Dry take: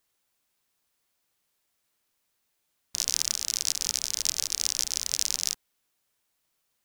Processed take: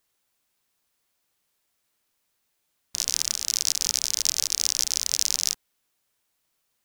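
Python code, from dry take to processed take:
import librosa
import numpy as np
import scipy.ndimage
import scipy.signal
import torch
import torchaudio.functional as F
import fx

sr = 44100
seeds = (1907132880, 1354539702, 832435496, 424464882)

y = fx.leveller(x, sr, passes=1, at=(3.48, 5.52))
y = y * 10.0 ** (1.5 / 20.0)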